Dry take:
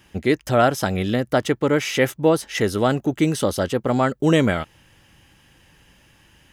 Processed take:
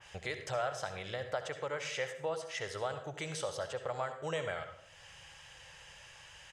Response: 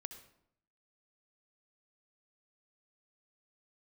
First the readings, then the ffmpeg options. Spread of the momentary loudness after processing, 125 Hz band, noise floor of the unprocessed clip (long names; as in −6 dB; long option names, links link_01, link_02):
16 LU, −22.0 dB, −56 dBFS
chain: -filter_complex "[0:a]firequalizer=gain_entry='entry(150,0);entry(230,-18);entry(520,9);entry(7900,13);entry(12000,-7)':delay=0.05:min_phase=1,acompressor=threshold=-40dB:ratio=2[link_01];[1:a]atrim=start_sample=2205[link_02];[link_01][link_02]afir=irnorm=-1:irlink=0,adynamicequalizer=threshold=0.00398:dfrequency=2600:dqfactor=0.7:tfrequency=2600:tqfactor=0.7:attack=5:release=100:ratio=0.375:range=2:mode=cutabove:tftype=highshelf,volume=-3.5dB"